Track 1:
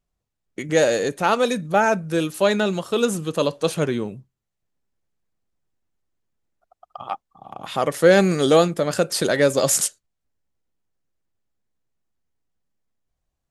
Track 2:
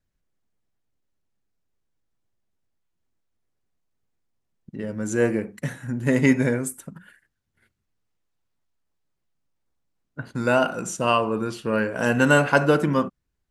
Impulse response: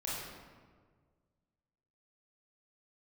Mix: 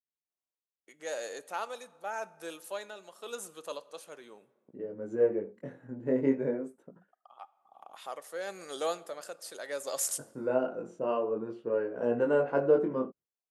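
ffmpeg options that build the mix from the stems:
-filter_complex "[0:a]tremolo=f=0.93:d=0.56,highpass=750,equalizer=frequency=2700:width_type=o:width=2.9:gain=-7.5,adelay=300,volume=-9dB,asplit=2[link_01][link_02];[link_02]volume=-21.5dB[link_03];[1:a]agate=range=-16dB:threshold=-46dB:ratio=16:detection=peak,flanger=delay=16:depth=7.7:speed=0.42,bandpass=frequency=450:width_type=q:width=1.9:csg=0,volume=-0.5dB[link_04];[2:a]atrim=start_sample=2205[link_05];[link_03][link_05]afir=irnorm=-1:irlink=0[link_06];[link_01][link_04][link_06]amix=inputs=3:normalize=0"

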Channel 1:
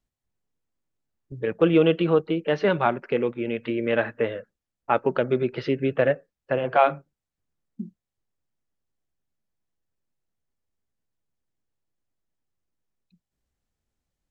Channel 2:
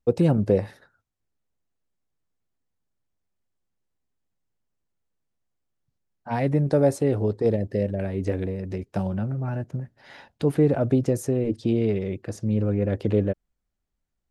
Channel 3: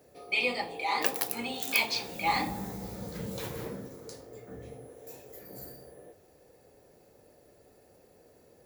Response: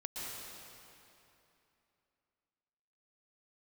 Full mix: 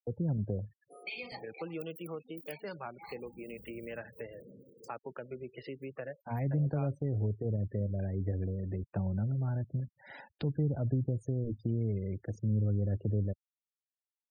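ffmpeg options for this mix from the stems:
-filter_complex "[0:a]lowshelf=frequency=270:gain=-9,volume=-9dB,asplit=2[link_01][link_02];[1:a]highshelf=frequency=11000:gain=-9.5,dynaudnorm=framelen=400:gausssize=7:maxgain=4.5dB,volume=-6dB[link_03];[2:a]highshelf=frequency=7700:gain=12,adelay=750,volume=-5dB[link_04];[link_02]apad=whole_len=414816[link_05];[link_04][link_05]sidechaincompress=threshold=-39dB:ratio=8:attack=24:release=1460[link_06];[link_01][link_03][link_06]amix=inputs=3:normalize=0,acrossover=split=150[link_07][link_08];[link_08]acompressor=threshold=-42dB:ratio=3[link_09];[link_07][link_09]amix=inputs=2:normalize=0,afftfilt=real='re*gte(hypot(re,im),0.00501)':imag='im*gte(hypot(re,im),0.00501)':win_size=1024:overlap=0.75"

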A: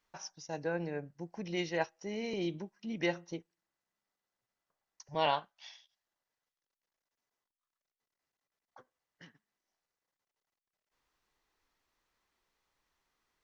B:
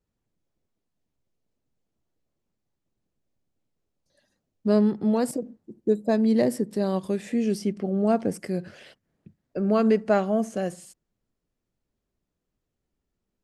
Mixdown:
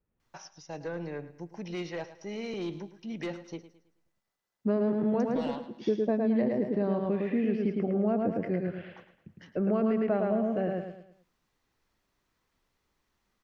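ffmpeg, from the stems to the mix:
ffmpeg -i stem1.wav -i stem2.wav -filter_complex "[0:a]acrossover=split=490[link_01][link_02];[link_02]acompressor=threshold=-39dB:ratio=2.5[link_03];[link_01][link_03]amix=inputs=2:normalize=0,aeval=exprs='0.0841*(cos(1*acos(clip(val(0)/0.0841,-1,1)))-cos(1*PI/2))+0.0133*(cos(5*acos(clip(val(0)/0.0841,-1,1)))-cos(5*PI/2))':channel_layout=same,adelay=200,volume=-3dB,asplit=2[link_04][link_05];[link_05]volume=-14.5dB[link_06];[1:a]lowpass=frequency=2600:width=0.5412,lowpass=frequency=2600:width=1.3066,volume=-1dB,asplit=3[link_07][link_08][link_09];[link_07]atrim=end=4.09,asetpts=PTS-STARTPTS,afade=type=out:start_time=4.086:duration=0.004:curve=hsin[link_10];[link_08]atrim=start=4.09:end=4.64,asetpts=PTS-STARTPTS,volume=0[link_11];[link_09]atrim=start=4.64,asetpts=PTS-STARTPTS,afade=type=in:duration=0.004:curve=hsin[link_12];[link_10][link_11][link_12]concat=n=3:v=0:a=1,asplit=2[link_13][link_14];[link_14]volume=-3.5dB[link_15];[link_06][link_15]amix=inputs=2:normalize=0,aecho=0:1:108|216|324|432|540:1|0.37|0.137|0.0507|0.0187[link_16];[link_04][link_13][link_16]amix=inputs=3:normalize=0,acrossover=split=700|4600[link_17][link_18][link_19];[link_17]acompressor=threshold=-25dB:ratio=4[link_20];[link_18]acompressor=threshold=-39dB:ratio=4[link_21];[link_19]acompressor=threshold=-58dB:ratio=4[link_22];[link_20][link_21][link_22]amix=inputs=3:normalize=0" out.wav

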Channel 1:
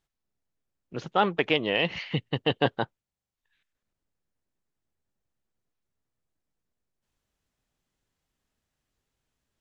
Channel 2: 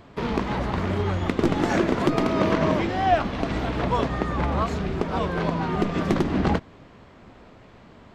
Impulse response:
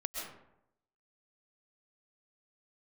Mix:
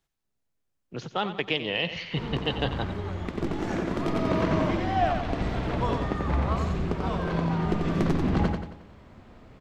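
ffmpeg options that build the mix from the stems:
-filter_complex "[0:a]acrossover=split=140|3000[link_01][link_02][link_03];[link_02]acompressor=threshold=-42dB:ratio=1.5[link_04];[link_01][link_04][link_03]amix=inputs=3:normalize=0,volume=2dB,asplit=3[link_05][link_06][link_07];[link_06]volume=-11.5dB[link_08];[1:a]lowshelf=frequency=130:gain=8,adelay=1900,volume=-6dB,asplit=2[link_09][link_10];[link_10]volume=-4.5dB[link_11];[link_07]apad=whole_len=443167[link_12];[link_09][link_12]sidechaincompress=threshold=-54dB:ratio=8:attack=5.3:release=718[link_13];[link_08][link_11]amix=inputs=2:normalize=0,aecho=0:1:90|180|270|360|450|540:1|0.44|0.194|0.0852|0.0375|0.0165[link_14];[link_05][link_13][link_14]amix=inputs=3:normalize=0"

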